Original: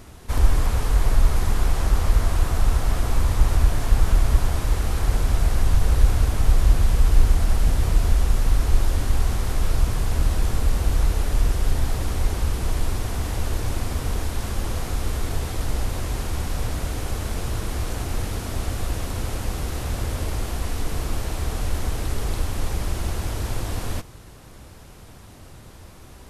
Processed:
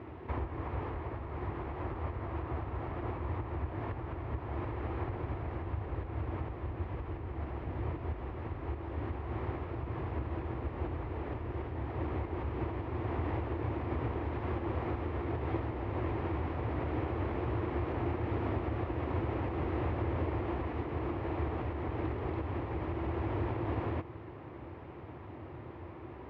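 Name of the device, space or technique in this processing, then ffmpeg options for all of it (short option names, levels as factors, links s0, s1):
bass amplifier: -af "acompressor=threshold=0.0562:ratio=6,highpass=f=77:w=0.5412,highpass=f=77:w=1.3066,equalizer=f=190:t=q:w=4:g=-9,equalizer=f=340:t=q:w=4:g=9,equalizer=f=940:t=q:w=4:g=3,equalizer=f=1500:t=q:w=4:g=-6,lowpass=f=2200:w=0.5412,lowpass=f=2200:w=1.3066"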